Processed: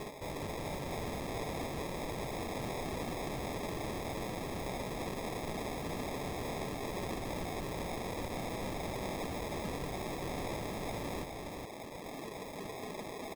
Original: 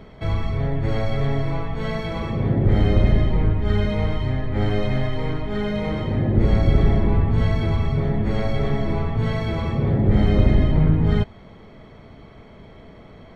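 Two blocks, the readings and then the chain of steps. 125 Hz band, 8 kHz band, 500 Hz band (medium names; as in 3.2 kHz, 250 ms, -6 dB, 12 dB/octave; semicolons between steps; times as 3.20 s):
-24.0 dB, no reading, -12.5 dB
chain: reverb removal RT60 1.2 s; high-pass 320 Hz 12 dB/octave; treble shelf 2.8 kHz -6.5 dB; reverse; compression 16:1, threshold -37 dBFS, peak gain reduction 13.5 dB; reverse; integer overflow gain 43 dB; flange 1 Hz, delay 4.8 ms, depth 7.3 ms, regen +71%; sample-and-hold 30×; on a send: delay 415 ms -3.5 dB; on the sum: trim +12 dB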